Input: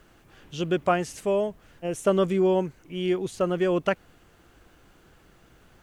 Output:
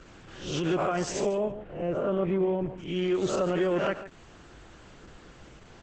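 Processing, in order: reverse spectral sustain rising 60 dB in 0.50 s; in parallel at -2 dB: compression 8:1, threshold -34 dBFS, peak gain reduction 18 dB; on the sum: peak limiter -18.5 dBFS, peak gain reduction 11 dB; 1.37–2.78 s: distance through air 490 m; on a send: delay 146 ms -12.5 dB; on the sum: Opus 10 kbps 48 kHz

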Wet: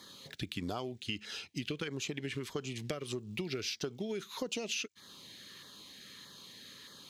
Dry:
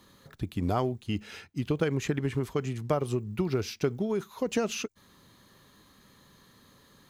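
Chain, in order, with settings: frequency weighting D; compression 4:1, threshold -37 dBFS, peak gain reduction 13.5 dB; LFO notch saw down 1.6 Hz 580–2800 Hz; trim +1.5 dB

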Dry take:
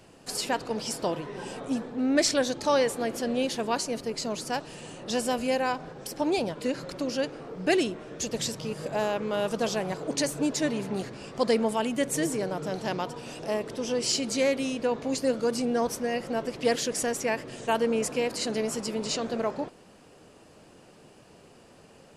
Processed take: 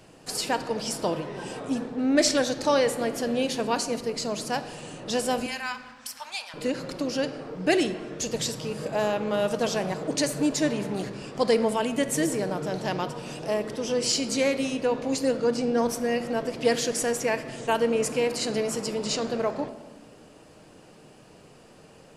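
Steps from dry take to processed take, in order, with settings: 5.46–6.54 s: high-pass 1.1 kHz 24 dB/octave; 15.32–15.78 s: distance through air 65 m; simulated room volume 1200 m³, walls mixed, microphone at 0.53 m; trim +1.5 dB

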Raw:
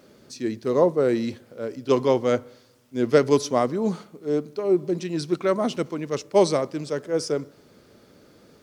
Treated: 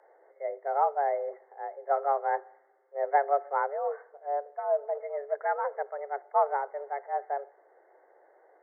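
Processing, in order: brick-wall FIR low-pass 1.9 kHz; frequency shift +280 Hz; trim -7 dB

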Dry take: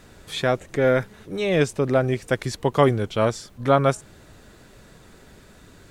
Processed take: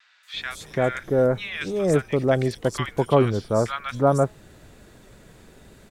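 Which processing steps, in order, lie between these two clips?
three bands offset in time mids, highs, lows 230/340 ms, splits 1.3/4.9 kHz; vibrato 0.55 Hz 16 cents

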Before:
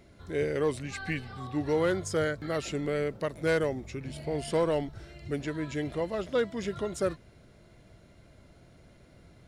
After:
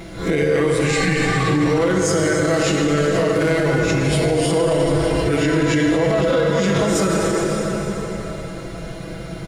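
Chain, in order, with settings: reverse spectral sustain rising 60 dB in 0.35 s; comb 6.1 ms, depth 100%; compression, threshold -29 dBFS, peak gain reduction 12 dB; plate-style reverb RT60 4.4 s, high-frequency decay 0.75×, DRR -0.5 dB; loudness maximiser +26 dB; trim -8.5 dB

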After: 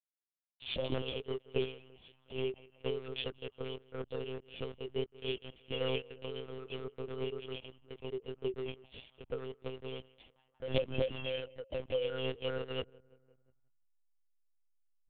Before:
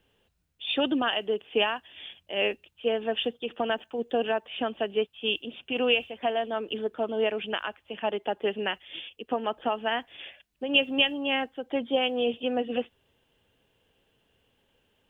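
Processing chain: elliptic band-stop 520–2800 Hz, stop band 80 dB; hysteresis with a dead band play -34 dBFS; on a send: band-passed feedback delay 175 ms, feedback 79%, band-pass 980 Hz, level -19 dB; on the sum: formant-preserving pitch shift +11.5 st; monotone LPC vocoder at 8 kHz 130 Hz; trim -5.5 dB

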